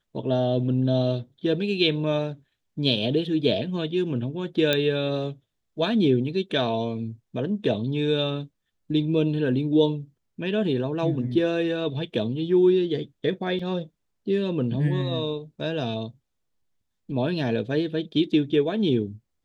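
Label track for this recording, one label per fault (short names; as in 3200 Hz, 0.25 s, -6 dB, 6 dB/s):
4.730000	4.730000	pop -8 dBFS
13.590000	13.590000	gap 4.1 ms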